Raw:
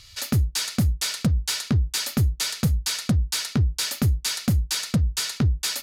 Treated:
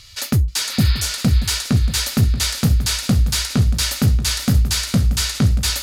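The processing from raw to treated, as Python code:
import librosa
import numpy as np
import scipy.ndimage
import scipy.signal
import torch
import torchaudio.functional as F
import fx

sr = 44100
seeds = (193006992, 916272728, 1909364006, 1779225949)

y = fx.spec_repair(x, sr, seeds[0], start_s=0.73, length_s=0.35, low_hz=780.0, high_hz=5200.0, source='both')
y = y + 10.0 ** (-13.0 / 20.0) * np.pad(y, (int(632 * sr / 1000.0), 0))[:len(y)]
y = fx.echo_warbled(y, sr, ms=479, feedback_pct=68, rate_hz=2.8, cents=72, wet_db=-8)
y = y * librosa.db_to_amplitude(4.5)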